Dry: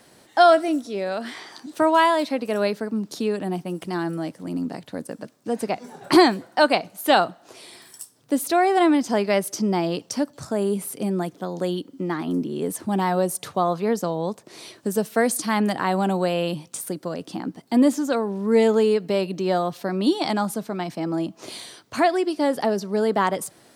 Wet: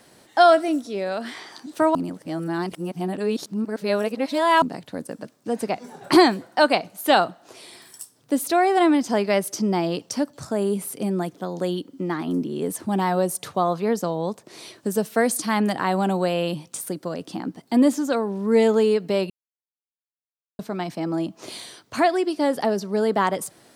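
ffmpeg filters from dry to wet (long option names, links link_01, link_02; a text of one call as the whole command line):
ffmpeg -i in.wav -filter_complex "[0:a]asplit=5[link_01][link_02][link_03][link_04][link_05];[link_01]atrim=end=1.952[link_06];[link_02]atrim=start=1.948:end=4.622,asetpts=PTS-STARTPTS,areverse[link_07];[link_03]atrim=start=4.618:end=19.3,asetpts=PTS-STARTPTS,afade=type=out:start_time=14.678:duration=0.004:curve=hsin[link_08];[link_04]atrim=start=19.3:end=20.59,asetpts=PTS-STARTPTS,volume=0[link_09];[link_05]atrim=start=20.59,asetpts=PTS-STARTPTS,afade=type=in:duration=0.004:curve=hsin[link_10];[link_06][link_07]acrossfade=duration=0.004:curve1=hsin:curve2=hsin[link_11];[link_08][link_09][link_10]concat=n=3:v=0:a=1[link_12];[link_11][link_12]acrossfade=duration=0.004:curve1=hsin:curve2=hsin" out.wav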